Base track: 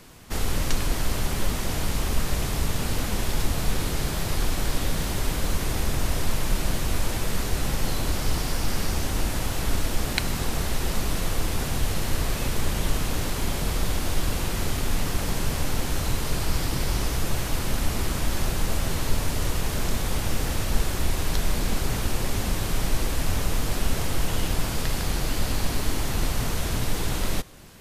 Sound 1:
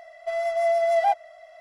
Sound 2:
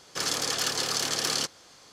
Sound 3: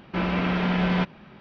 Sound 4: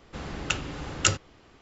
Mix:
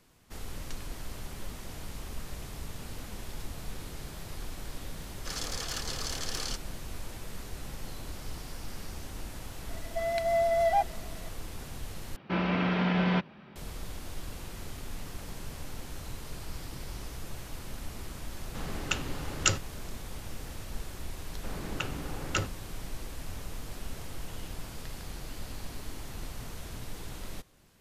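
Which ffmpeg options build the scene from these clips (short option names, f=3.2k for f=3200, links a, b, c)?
-filter_complex "[4:a]asplit=2[a][b];[0:a]volume=-15dB[c];[3:a]highpass=75[d];[b]lowpass=f=1.9k:p=1[e];[c]asplit=2[f][g];[f]atrim=end=12.164[h];[d]atrim=end=1.4,asetpts=PTS-STARTPTS,volume=-3.5dB[i];[g]atrim=start=13.556[j];[2:a]atrim=end=1.92,asetpts=PTS-STARTPTS,volume=-9dB,afade=t=in:d=0.004:c=hsin,afade=t=out:st=1.916:d=0.004:c=hsin,adelay=5100[k];[1:a]atrim=end=1.6,asetpts=PTS-STARTPTS,volume=-4.5dB,afade=t=in:d=0.004:c=hsin,afade=t=out:st=1.596:d=0.004:c=hsin,adelay=9690[l];[a]atrim=end=1.61,asetpts=PTS-STARTPTS,volume=-3dB,afade=t=in:d=0.004:c=hsin,afade=t=out:st=1.606:d=0.004:c=hsin,adelay=18410[m];[e]atrim=end=1.61,asetpts=PTS-STARTPTS,volume=-3dB,afade=t=in:d=0.004:c=hsin,afade=t=out:st=1.606:d=0.004:c=hsin,adelay=21300[n];[h][i]acrossfade=d=0.004:c1=hsin:c2=hsin[o];[o][j]acrossfade=d=0.004:c1=hsin:c2=hsin[p];[p][k][l][m][n]amix=inputs=5:normalize=0"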